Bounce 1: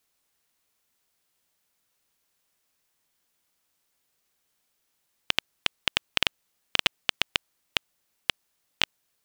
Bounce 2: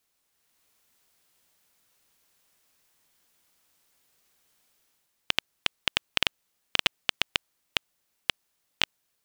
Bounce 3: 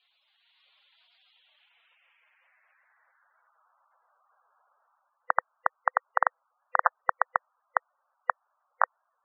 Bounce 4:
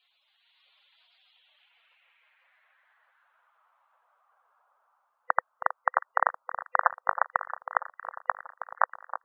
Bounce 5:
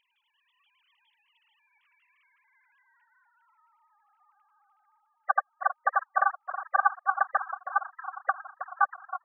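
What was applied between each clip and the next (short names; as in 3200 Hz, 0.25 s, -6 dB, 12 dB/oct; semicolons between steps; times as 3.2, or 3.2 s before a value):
AGC gain up to 7 dB; gain -1 dB
Chebyshev band-pass 610–8200 Hz, order 2; low-pass sweep 3400 Hz -> 1200 Hz, 1.35–3.73; spectral gate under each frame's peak -10 dB strong; gain +8.5 dB
echo with dull and thin repeats by turns 0.319 s, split 1400 Hz, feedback 72%, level -10.5 dB
sine-wave speech; gain +1 dB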